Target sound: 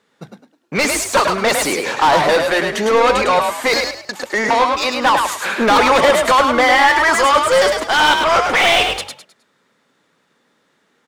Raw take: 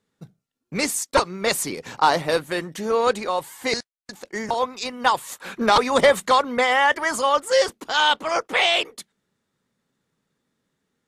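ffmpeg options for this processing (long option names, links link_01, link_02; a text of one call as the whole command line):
ffmpeg -i in.wav -filter_complex "[0:a]asplit=2[link_01][link_02];[link_02]highpass=frequency=720:poles=1,volume=25dB,asoftclip=type=tanh:threshold=-4dB[link_03];[link_01][link_03]amix=inputs=2:normalize=0,lowpass=frequency=2700:poles=1,volume=-6dB,bandreject=frequency=60:width_type=h:width=6,bandreject=frequency=120:width_type=h:width=6,asplit=5[link_04][link_05][link_06][link_07][link_08];[link_05]adelay=104,afreqshift=46,volume=-4.5dB[link_09];[link_06]adelay=208,afreqshift=92,volume=-14.7dB[link_10];[link_07]adelay=312,afreqshift=138,volume=-24.8dB[link_11];[link_08]adelay=416,afreqshift=184,volume=-35dB[link_12];[link_04][link_09][link_10][link_11][link_12]amix=inputs=5:normalize=0,volume=-1dB" out.wav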